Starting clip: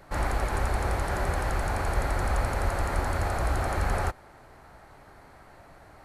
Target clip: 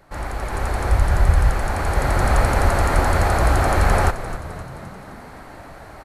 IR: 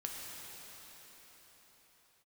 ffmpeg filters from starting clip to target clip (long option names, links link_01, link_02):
-filter_complex "[0:a]asplit=3[link_01][link_02][link_03];[link_01]afade=type=out:start_time=0.9:duration=0.02[link_04];[link_02]asubboost=boost=7.5:cutoff=150,afade=type=in:start_time=0.9:duration=0.02,afade=type=out:start_time=1.49:duration=0.02[link_05];[link_03]afade=type=in:start_time=1.49:duration=0.02[link_06];[link_04][link_05][link_06]amix=inputs=3:normalize=0,asplit=7[link_07][link_08][link_09][link_10][link_11][link_12][link_13];[link_08]adelay=261,afreqshift=-57,volume=-13dB[link_14];[link_09]adelay=522,afreqshift=-114,volume=-17.9dB[link_15];[link_10]adelay=783,afreqshift=-171,volume=-22.8dB[link_16];[link_11]adelay=1044,afreqshift=-228,volume=-27.6dB[link_17];[link_12]adelay=1305,afreqshift=-285,volume=-32.5dB[link_18];[link_13]adelay=1566,afreqshift=-342,volume=-37.4dB[link_19];[link_07][link_14][link_15][link_16][link_17][link_18][link_19]amix=inputs=7:normalize=0,dynaudnorm=framelen=170:gausssize=7:maxgain=12.5dB,volume=-1dB"